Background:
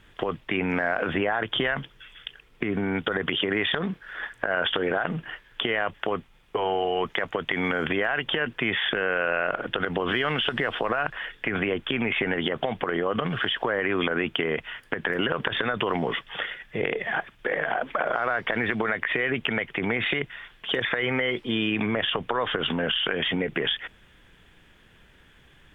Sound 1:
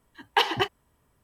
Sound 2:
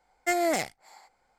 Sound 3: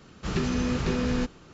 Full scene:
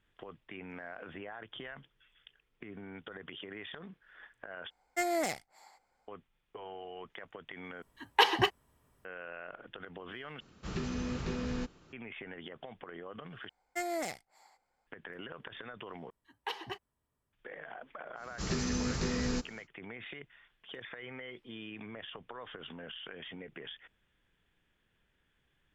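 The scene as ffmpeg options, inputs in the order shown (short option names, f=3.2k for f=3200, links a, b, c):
-filter_complex "[2:a]asplit=2[a][b];[1:a]asplit=2[c][d];[3:a]asplit=2[e][f];[0:a]volume=-20dB[g];[f]aexciter=amount=2.6:drive=6.9:freq=4.4k[h];[g]asplit=6[i][j][k][l][m][n];[i]atrim=end=4.704[o];[a]atrim=end=1.38,asetpts=PTS-STARTPTS,volume=-6dB[p];[j]atrim=start=6.076:end=7.824[q];[c]atrim=end=1.23,asetpts=PTS-STARTPTS,volume=-2dB[r];[k]atrim=start=9.046:end=10.404[s];[e]atrim=end=1.53,asetpts=PTS-STARTPTS,volume=-9.5dB[t];[l]atrim=start=11.926:end=13.494[u];[b]atrim=end=1.38,asetpts=PTS-STARTPTS,volume=-10dB[v];[m]atrim=start=14.866:end=16.104[w];[d]atrim=end=1.23,asetpts=PTS-STARTPTS,volume=-16.5dB[x];[n]atrim=start=17.326[y];[h]atrim=end=1.53,asetpts=PTS-STARTPTS,volume=-7dB,afade=t=in:d=0.1,afade=t=out:st=1.43:d=0.1,adelay=18150[z];[o][p]acrossfade=d=0.004:c1=hsin:c2=hsin[aa];[aa][q]acrossfade=d=0.004:c1=hsin:c2=hsin[ab];[ab][r]acrossfade=d=0.004:c1=hsin:c2=hsin[ac];[ac][s]acrossfade=d=0.004:c1=hsin:c2=hsin[ad];[ad][t]acrossfade=d=0.004:c1=hsin:c2=hsin[ae];[ae][u]acrossfade=d=0.004:c1=hsin:c2=hsin[af];[af][v]acrossfade=d=0.004:c1=hsin:c2=hsin[ag];[ag][w]acrossfade=d=0.004:c1=hsin:c2=hsin[ah];[ah][x]acrossfade=d=0.004:c1=hsin:c2=hsin[ai];[ai][y]acrossfade=d=0.004:c1=hsin:c2=hsin[aj];[aj][z]amix=inputs=2:normalize=0"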